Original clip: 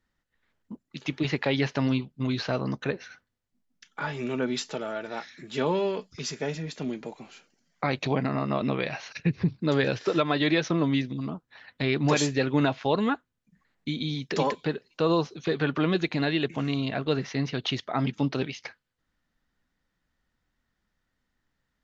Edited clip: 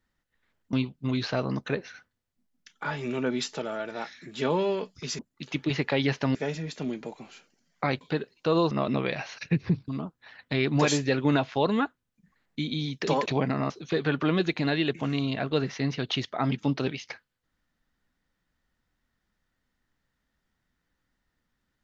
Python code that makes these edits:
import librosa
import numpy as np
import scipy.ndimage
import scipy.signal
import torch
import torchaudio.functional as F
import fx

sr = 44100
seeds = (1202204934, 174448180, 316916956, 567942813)

y = fx.edit(x, sr, fx.move(start_s=0.73, length_s=1.16, to_s=6.35),
    fx.swap(start_s=8.01, length_s=0.44, other_s=14.55, other_length_s=0.7),
    fx.cut(start_s=9.62, length_s=1.55), tone=tone)